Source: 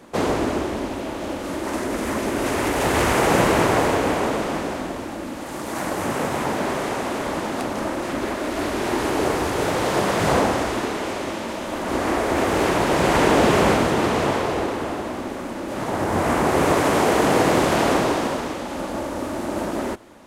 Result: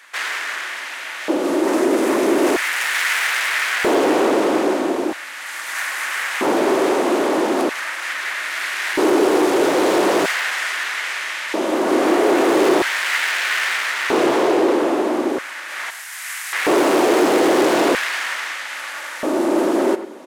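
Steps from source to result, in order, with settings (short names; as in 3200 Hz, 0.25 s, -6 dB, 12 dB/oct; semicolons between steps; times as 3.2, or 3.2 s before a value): 15.9–16.53 differentiator; speakerphone echo 0.1 s, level -13 dB; overloaded stage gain 22 dB; on a send at -12.5 dB: reverb RT60 0.55 s, pre-delay 3 ms; on the sum: LFO high-pass square 0.39 Hz 340–1800 Hz; gain +5 dB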